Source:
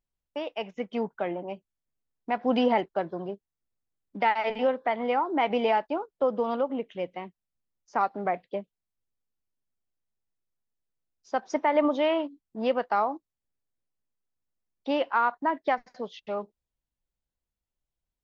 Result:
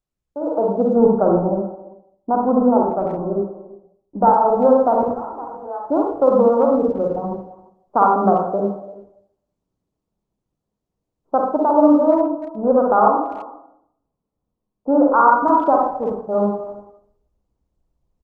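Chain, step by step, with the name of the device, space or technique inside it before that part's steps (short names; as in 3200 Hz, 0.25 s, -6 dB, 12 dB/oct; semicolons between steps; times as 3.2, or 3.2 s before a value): Wiener smoothing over 25 samples; steep low-pass 1400 Hz 96 dB/oct; 5.03–5.84 differentiator; speakerphone in a meeting room (reverb RT60 0.65 s, pre-delay 45 ms, DRR -1 dB; speakerphone echo 0.34 s, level -20 dB; AGC gain up to 16.5 dB; gain -1 dB; Opus 20 kbps 48000 Hz)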